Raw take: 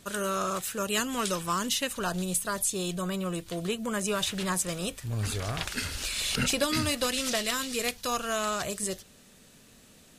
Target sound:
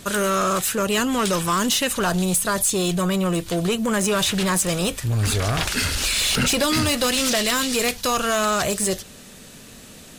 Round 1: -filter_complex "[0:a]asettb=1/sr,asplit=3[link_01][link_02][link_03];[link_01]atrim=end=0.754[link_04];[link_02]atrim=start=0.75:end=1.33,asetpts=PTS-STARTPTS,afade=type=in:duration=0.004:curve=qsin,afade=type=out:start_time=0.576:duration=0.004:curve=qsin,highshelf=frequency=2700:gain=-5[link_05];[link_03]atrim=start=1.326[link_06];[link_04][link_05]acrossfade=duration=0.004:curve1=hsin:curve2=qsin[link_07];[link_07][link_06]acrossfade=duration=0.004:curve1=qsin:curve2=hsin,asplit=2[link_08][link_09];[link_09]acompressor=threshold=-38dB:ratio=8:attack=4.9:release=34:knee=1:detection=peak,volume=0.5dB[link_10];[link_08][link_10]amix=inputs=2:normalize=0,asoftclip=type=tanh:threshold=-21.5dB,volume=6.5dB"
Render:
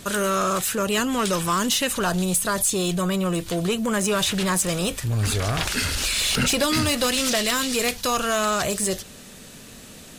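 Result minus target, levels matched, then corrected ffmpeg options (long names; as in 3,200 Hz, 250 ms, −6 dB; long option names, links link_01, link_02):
downward compressor: peak gain reduction +7 dB
-filter_complex "[0:a]asettb=1/sr,asplit=3[link_01][link_02][link_03];[link_01]atrim=end=0.754[link_04];[link_02]atrim=start=0.75:end=1.33,asetpts=PTS-STARTPTS,afade=type=in:duration=0.004:curve=qsin,afade=type=out:start_time=0.576:duration=0.004:curve=qsin,highshelf=frequency=2700:gain=-5[link_05];[link_03]atrim=start=1.326[link_06];[link_04][link_05]acrossfade=duration=0.004:curve1=hsin:curve2=qsin[link_07];[link_07][link_06]acrossfade=duration=0.004:curve1=qsin:curve2=hsin,asplit=2[link_08][link_09];[link_09]acompressor=threshold=-30dB:ratio=8:attack=4.9:release=34:knee=1:detection=peak,volume=0.5dB[link_10];[link_08][link_10]amix=inputs=2:normalize=0,asoftclip=type=tanh:threshold=-21.5dB,volume=6.5dB"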